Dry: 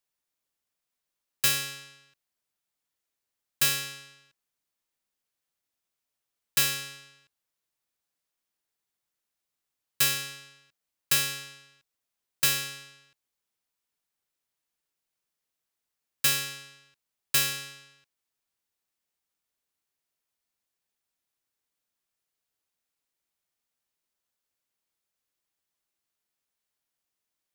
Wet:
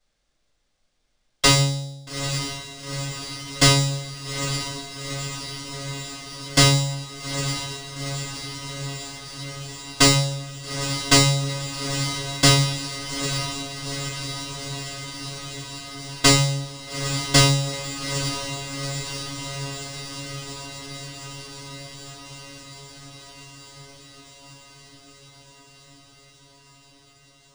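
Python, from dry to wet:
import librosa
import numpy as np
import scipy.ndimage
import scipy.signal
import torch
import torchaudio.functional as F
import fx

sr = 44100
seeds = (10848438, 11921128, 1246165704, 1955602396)

p1 = fx.brickwall_bandstop(x, sr, low_hz=880.0, high_hz=3200.0)
p2 = fx.low_shelf(p1, sr, hz=71.0, db=12.0)
p3 = p2 + fx.echo_diffused(p2, sr, ms=855, feedback_pct=75, wet_db=-9.0, dry=0)
p4 = fx.room_shoebox(p3, sr, seeds[0], volume_m3=170.0, walls='furnished', distance_m=5.8)
p5 = np.interp(np.arange(len(p4)), np.arange(len(p4))[::3], p4[::3])
y = p5 * 10.0 ** (2.5 / 20.0)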